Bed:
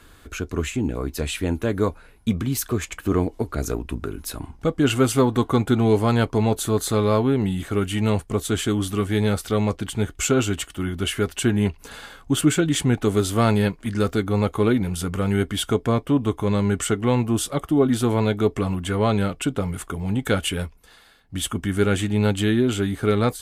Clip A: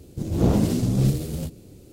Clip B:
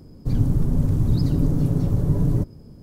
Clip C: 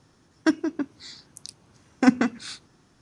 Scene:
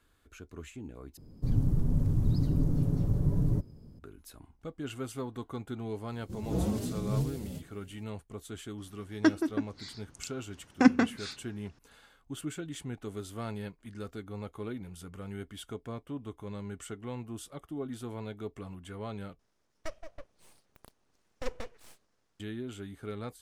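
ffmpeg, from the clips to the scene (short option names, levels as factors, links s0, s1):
-filter_complex "[3:a]asplit=2[s0][s1];[0:a]volume=0.106[s2];[2:a]lowshelf=f=210:g=3.5[s3];[1:a]asplit=2[s4][s5];[s5]adelay=4.4,afreqshift=2.7[s6];[s4][s6]amix=inputs=2:normalize=1[s7];[s0]lowpass=6500[s8];[s1]aeval=exprs='abs(val(0))':c=same[s9];[s2]asplit=3[s10][s11][s12];[s10]atrim=end=1.174[s13];[s3]atrim=end=2.82,asetpts=PTS-STARTPTS,volume=0.316[s14];[s11]atrim=start=3.986:end=19.394[s15];[s9]atrim=end=3.01,asetpts=PTS-STARTPTS,volume=0.178[s16];[s12]atrim=start=22.396[s17];[s7]atrim=end=1.92,asetpts=PTS-STARTPTS,volume=0.376,afade=t=in:d=0.004:c=hsin,afade=t=out:st=1.916:d=0.004:c=hsin,adelay=6120[s18];[s8]atrim=end=3.01,asetpts=PTS-STARTPTS,volume=0.708,afade=t=in:d=0.004:c=hsin,afade=t=out:st=3.006:d=0.004:c=hsin,adelay=8780[s19];[s13][s14]acrossfade=d=0.004:c1=hsin:c2=hsin[s20];[s20][s15]acrossfade=d=0.004:c1=hsin:c2=hsin[s21];[s21][s16]acrossfade=d=0.004:c1=hsin:c2=hsin[s22];[s22][s17]acrossfade=d=0.004:c1=hsin:c2=hsin[s23];[s23][s18][s19]amix=inputs=3:normalize=0"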